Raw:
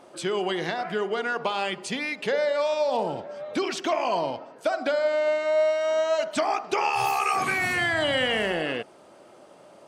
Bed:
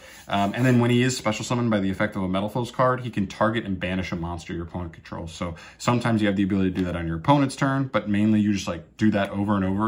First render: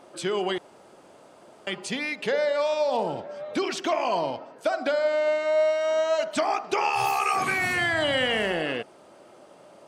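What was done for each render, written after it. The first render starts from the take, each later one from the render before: 0.58–1.67 room tone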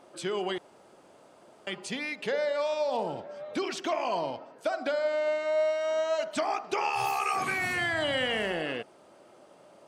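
gain -4.5 dB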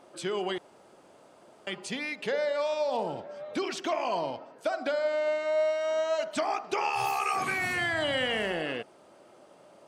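nothing audible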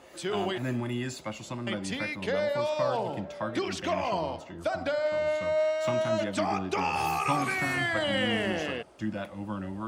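add bed -12.5 dB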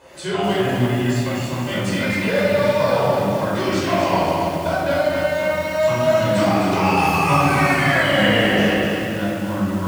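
shoebox room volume 1000 m³, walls mixed, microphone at 5 m; lo-fi delay 0.253 s, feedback 55%, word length 6-bit, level -5 dB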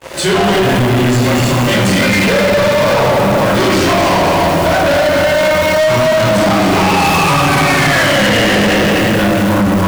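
compressor 3:1, threshold -18 dBFS, peak gain reduction 5.5 dB; sample leveller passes 5

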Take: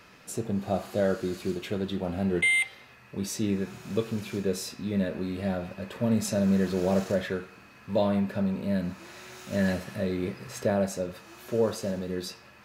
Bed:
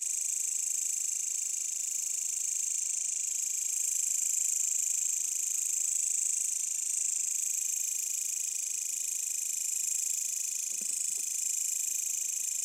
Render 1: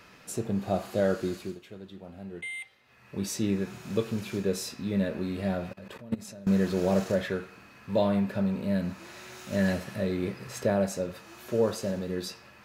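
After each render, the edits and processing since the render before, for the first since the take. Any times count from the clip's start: 1.28–3.15 dip -14 dB, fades 0.32 s; 5.73–6.47 level quantiser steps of 22 dB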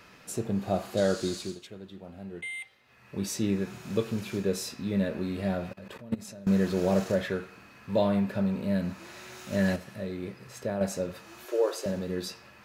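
0.97–1.67 band shelf 5800 Hz +10.5 dB; 9.76–10.81 gain -6 dB; 11.45–11.86 brick-wall FIR high-pass 280 Hz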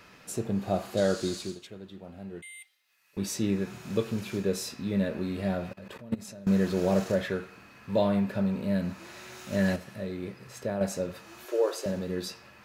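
2.42–3.17 differentiator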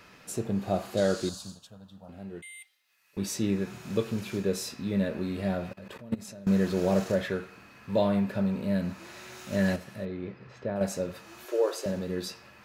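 1.29–2.09 fixed phaser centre 890 Hz, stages 4; 10.05–10.76 air absorption 230 m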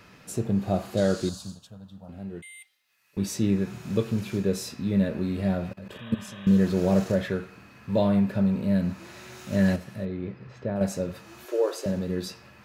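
5.96–6.55 spectral repair 560–3900 Hz before; bell 110 Hz +6.5 dB 2.6 oct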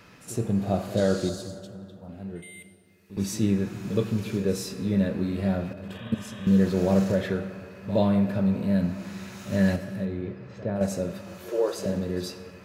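reverse echo 69 ms -15.5 dB; plate-style reverb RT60 2.5 s, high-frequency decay 0.45×, DRR 10.5 dB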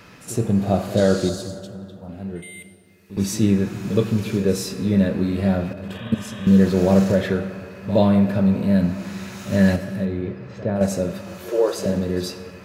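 gain +6 dB

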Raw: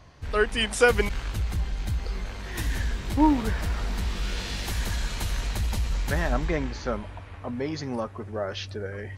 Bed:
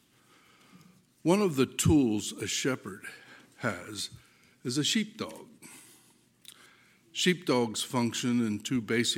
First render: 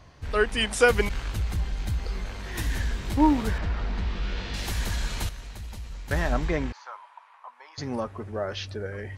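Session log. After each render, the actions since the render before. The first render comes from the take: 3.58–4.54 air absorption 170 m; 5.29–6.11 gain -11 dB; 6.72–7.78 ladder high-pass 890 Hz, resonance 70%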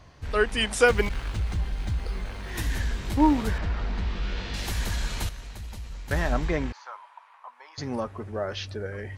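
0.87–2.51 decimation joined by straight lines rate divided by 3×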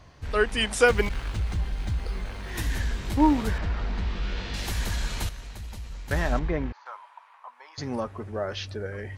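6.39–6.86 tape spacing loss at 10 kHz 23 dB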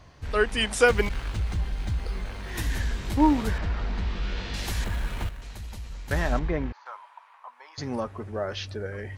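4.84–5.42 median filter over 9 samples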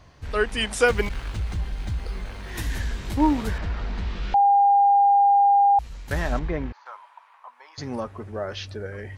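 4.34–5.79 bleep 804 Hz -13.5 dBFS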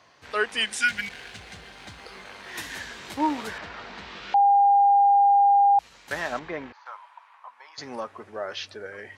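0.67–1.65 spectral repair 260–1400 Hz after; weighting filter A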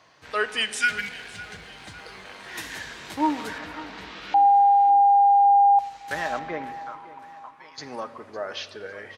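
feedback echo 0.556 s, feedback 51%, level -18.5 dB; shoebox room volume 3400 m³, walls mixed, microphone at 0.57 m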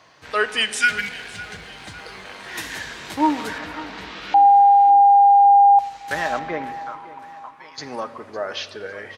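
gain +4.5 dB

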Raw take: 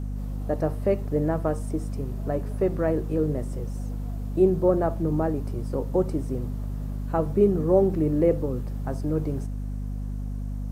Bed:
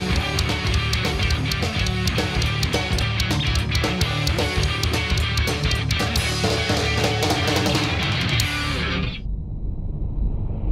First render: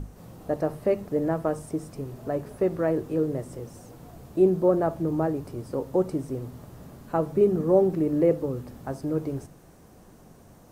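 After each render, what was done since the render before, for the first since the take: notches 50/100/150/200/250 Hz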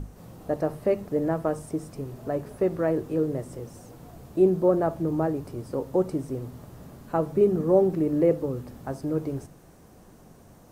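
nothing audible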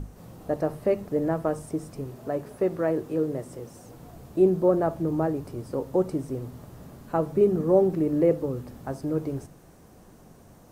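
2.11–3.86 low shelf 96 Hz -9.5 dB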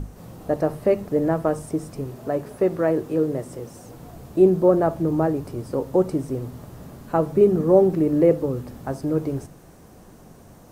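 gain +4.5 dB

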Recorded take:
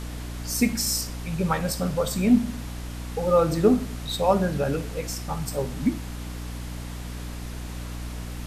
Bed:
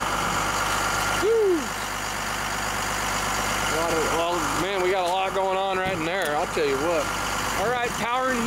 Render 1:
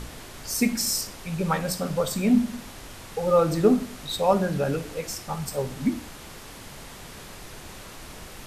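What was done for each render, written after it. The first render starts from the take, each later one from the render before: de-hum 60 Hz, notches 5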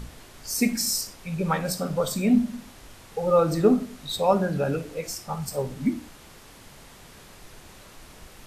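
noise print and reduce 6 dB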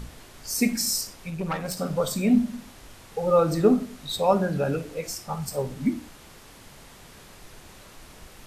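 1.3–1.77 tube stage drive 21 dB, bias 0.65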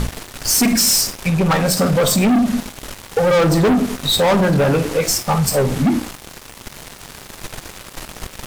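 sample leveller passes 5; compressor 2:1, threshold -15 dBFS, peak gain reduction 3.5 dB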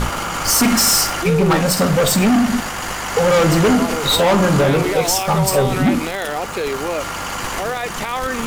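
add bed +1 dB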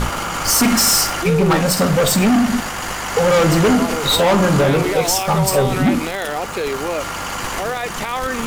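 nothing audible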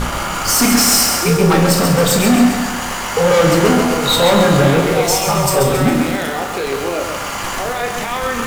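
flutter echo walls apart 5 m, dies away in 0.25 s; lo-fi delay 0.135 s, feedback 55%, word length 6-bit, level -5 dB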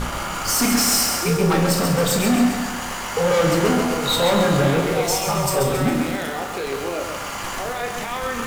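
gain -6 dB

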